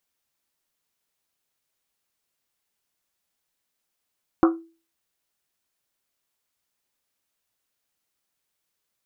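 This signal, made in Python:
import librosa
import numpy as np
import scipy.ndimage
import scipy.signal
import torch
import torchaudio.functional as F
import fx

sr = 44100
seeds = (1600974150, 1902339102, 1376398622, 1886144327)

y = fx.risset_drum(sr, seeds[0], length_s=1.1, hz=330.0, decay_s=0.36, noise_hz=1200.0, noise_width_hz=420.0, noise_pct=20)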